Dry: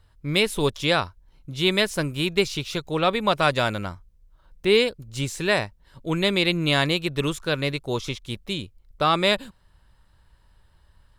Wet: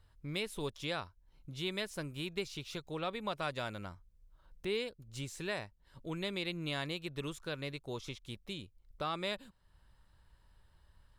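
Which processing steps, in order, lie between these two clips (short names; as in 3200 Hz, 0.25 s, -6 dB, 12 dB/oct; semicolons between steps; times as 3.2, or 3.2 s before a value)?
compressor 1.5:1, threshold -44 dBFS, peak gain reduction 11 dB; gain -7 dB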